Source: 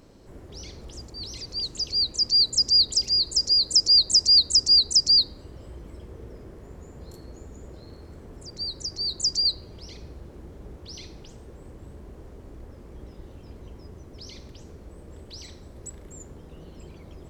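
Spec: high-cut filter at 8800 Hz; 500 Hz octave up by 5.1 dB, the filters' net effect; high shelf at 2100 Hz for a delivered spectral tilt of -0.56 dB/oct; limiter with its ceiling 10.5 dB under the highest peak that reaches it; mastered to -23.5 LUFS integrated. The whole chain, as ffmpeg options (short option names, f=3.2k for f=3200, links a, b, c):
-af "lowpass=8.8k,equalizer=f=500:t=o:g=6,highshelf=f=2.1k:g=7.5,volume=-5.5dB,alimiter=limit=-18.5dB:level=0:latency=1"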